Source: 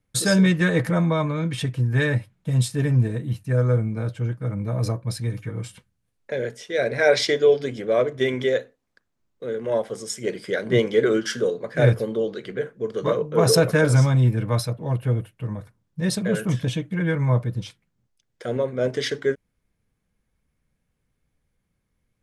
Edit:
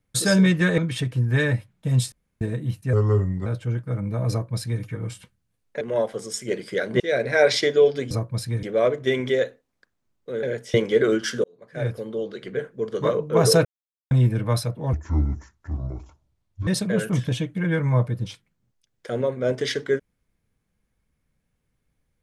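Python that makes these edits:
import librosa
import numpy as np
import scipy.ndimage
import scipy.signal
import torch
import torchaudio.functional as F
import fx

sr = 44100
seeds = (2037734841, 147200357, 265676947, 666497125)

y = fx.edit(x, sr, fx.cut(start_s=0.78, length_s=0.62),
    fx.room_tone_fill(start_s=2.74, length_s=0.29),
    fx.speed_span(start_s=3.55, length_s=0.45, speed=0.85),
    fx.duplicate(start_s=4.84, length_s=0.52, to_s=7.77),
    fx.swap(start_s=6.35, length_s=0.31, other_s=9.57, other_length_s=1.19),
    fx.fade_in_span(start_s=11.46, length_s=1.21),
    fx.silence(start_s=13.67, length_s=0.46),
    fx.speed_span(start_s=14.95, length_s=1.08, speed=0.62), tone=tone)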